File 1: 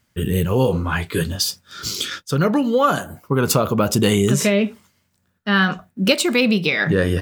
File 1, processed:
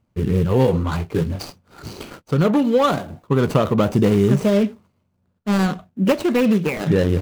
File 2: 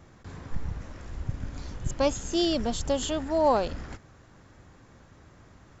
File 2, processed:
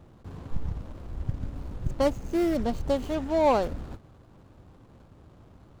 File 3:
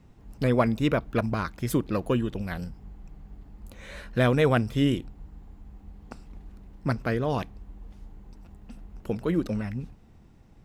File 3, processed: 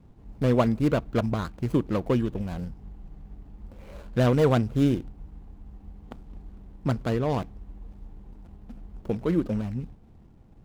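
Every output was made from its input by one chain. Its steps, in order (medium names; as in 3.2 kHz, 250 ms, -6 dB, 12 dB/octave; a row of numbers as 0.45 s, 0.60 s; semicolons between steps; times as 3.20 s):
median filter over 25 samples; trim +1.5 dB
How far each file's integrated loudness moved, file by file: 0.0 LU, 0.0 LU, +1.0 LU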